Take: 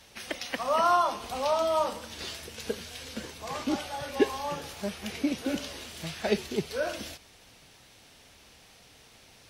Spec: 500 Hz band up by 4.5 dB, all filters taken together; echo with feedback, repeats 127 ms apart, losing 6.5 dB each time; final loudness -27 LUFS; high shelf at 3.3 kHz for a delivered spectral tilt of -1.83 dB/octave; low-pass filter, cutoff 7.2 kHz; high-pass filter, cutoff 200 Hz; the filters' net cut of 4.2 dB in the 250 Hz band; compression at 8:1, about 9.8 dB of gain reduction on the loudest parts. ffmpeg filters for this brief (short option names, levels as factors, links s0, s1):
-af "highpass=200,lowpass=7200,equalizer=f=250:t=o:g=-7,equalizer=f=500:t=o:g=7.5,highshelf=f=3300:g=7.5,acompressor=threshold=0.0562:ratio=8,aecho=1:1:127|254|381|508|635|762:0.473|0.222|0.105|0.0491|0.0231|0.0109,volume=1.58"